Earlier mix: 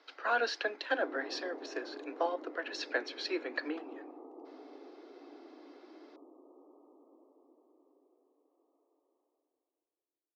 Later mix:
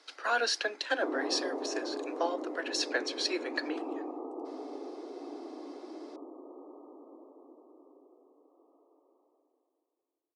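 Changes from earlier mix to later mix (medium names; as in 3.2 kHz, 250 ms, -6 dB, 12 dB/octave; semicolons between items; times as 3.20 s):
background +9.5 dB; master: remove distance through air 210 m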